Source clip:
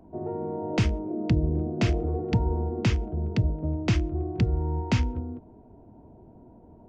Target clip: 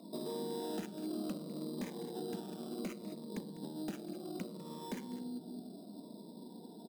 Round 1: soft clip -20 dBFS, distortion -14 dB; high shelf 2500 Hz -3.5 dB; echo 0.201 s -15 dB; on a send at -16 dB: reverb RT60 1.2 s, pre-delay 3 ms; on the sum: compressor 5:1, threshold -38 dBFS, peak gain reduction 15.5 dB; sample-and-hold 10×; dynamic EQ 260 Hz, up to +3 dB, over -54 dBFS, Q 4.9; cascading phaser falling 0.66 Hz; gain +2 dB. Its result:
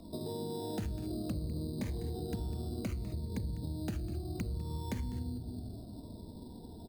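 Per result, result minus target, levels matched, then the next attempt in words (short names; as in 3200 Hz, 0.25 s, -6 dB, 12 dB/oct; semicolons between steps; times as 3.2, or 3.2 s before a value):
soft clip: distortion -8 dB; 250 Hz band -2.5 dB
soft clip -29 dBFS, distortion -6 dB; high shelf 2500 Hz -3.5 dB; echo 0.201 s -15 dB; on a send at -16 dB: reverb RT60 1.2 s, pre-delay 3 ms; on the sum: compressor 5:1, threshold -38 dBFS, peak gain reduction 11 dB; sample-and-hold 10×; dynamic EQ 260 Hz, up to +3 dB, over -54 dBFS, Q 4.9; cascading phaser falling 0.66 Hz; gain +2 dB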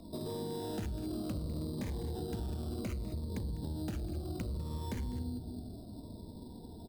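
250 Hz band -2.5 dB
soft clip -29 dBFS, distortion -6 dB; high shelf 2500 Hz -3.5 dB; echo 0.201 s -15 dB; on a send at -16 dB: reverb RT60 1.2 s, pre-delay 3 ms; on the sum: compressor 5:1, threshold -38 dBFS, peak gain reduction 11 dB; elliptic high-pass 180 Hz, stop band 60 dB; sample-and-hold 10×; dynamic EQ 260 Hz, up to +3 dB, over -54 dBFS, Q 4.9; cascading phaser falling 0.66 Hz; gain +2 dB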